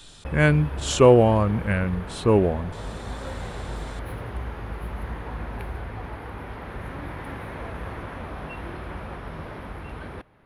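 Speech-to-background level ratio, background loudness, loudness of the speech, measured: 15.0 dB, -35.5 LUFS, -20.5 LUFS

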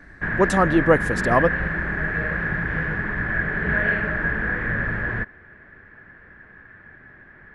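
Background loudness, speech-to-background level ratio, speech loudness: -24.0 LUFS, 3.5 dB, -20.5 LUFS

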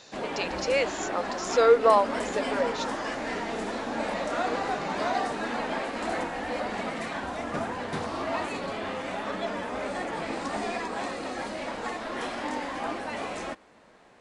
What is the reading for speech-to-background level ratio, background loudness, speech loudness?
6.5 dB, -32.0 LUFS, -25.5 LUFS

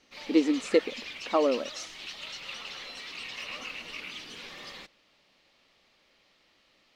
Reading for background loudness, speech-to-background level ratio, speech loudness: -39.0 LUFS, 12.0 dB, -27.0 LUFS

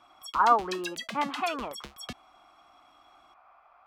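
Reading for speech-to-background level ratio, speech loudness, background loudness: 11.0 dB, -28.5 LUFS, -39.5 LUFS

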